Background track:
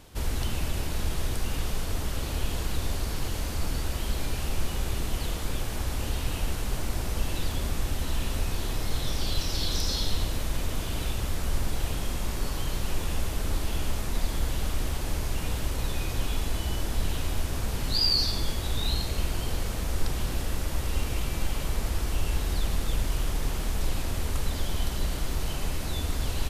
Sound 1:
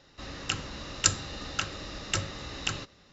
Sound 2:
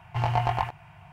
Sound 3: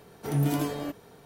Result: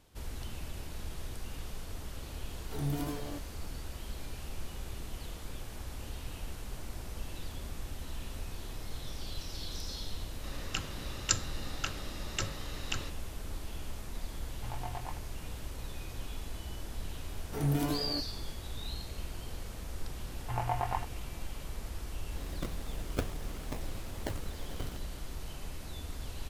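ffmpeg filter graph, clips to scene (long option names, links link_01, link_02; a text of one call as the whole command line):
ffmpeg -i bed.wav -i cue0.wav -i cue1.wav -i cue2.wav -filter_complex "[3:a]asplit=2[link_01][link_02];[1:a]asplit=2[link_03][link_04];[2:a]asplit=2[link_05][link_06];[0:a]volume=-12dB[link_07];[link_06]highpass=120,lowpass=2300[link_08];[link_04]acrusher=samples=41:mix=1:aa=0.000001:lfo=1:lforange=24.6:lforate=2.3[link_09];[link_01]atrim=end=1.25,asetpts=PTS-STARTPTS,volume=-9dB,afade=type=in:duration=0.004:curve=hsin,afade=type=out:start_time=1.246:duration=0.004:curve=hsin,adelay=2470[link_10];[link_03]atrim=end=3.12,asetpts=PTS-STARTPTS,volume=-5.5dB,afade=type=in:duration=0.004:curve=hsin,afade=type=out:start_time=3.116:duration=0.004:curve=hsin,adelay=10250[link_11];[link_05]atrim=end=1.12,asetpts=PTS-STARTPTS,volume=-17dB,afade=type=in:duration=0.004:curve=hsin,afade=type=out:start_time=1.116:duration=0.004:curve=hsin,adelay=14480[link_12];[link_02]atrim=end=1.25,asetpts=PTS-STARTPTS,volume=-4.5dB,afade=type=in:duration=0.004:curve=hsin,afade=type=out:start_time=1.246:duration=0.004:curve=hsin,adelay=17290[link_13];[link_08]atrim=end=1.12,asetpts=PTS-STARTPTS,volume=-7dB,afade=type=in:duration=0.004:curve=hsin,afade=type=out:start_time=1.116:duration=0.004:curve=hsin,adelay=20340[link_14];[link_09]atrim=end=3.12,asetpts=PTS-STARTPTS,volume=-8.5dB,afade=type=in:duration=0.004:curve=hsin,afade=type=out:start_time=3.116:duration=0.004:curve=hsin,adelay=22130[link_15];[link_07][link_10][link_11][link_12][link_13][link_14][link_15]amix=inputs=7:normalize=0" out.wav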